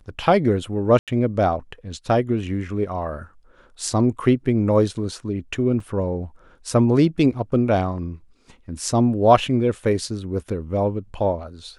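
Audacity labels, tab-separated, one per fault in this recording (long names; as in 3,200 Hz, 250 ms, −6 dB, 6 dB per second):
0.990000	1.080000	drop-out 87 ms
5.800000	5.800000	drop-out 3.3 ms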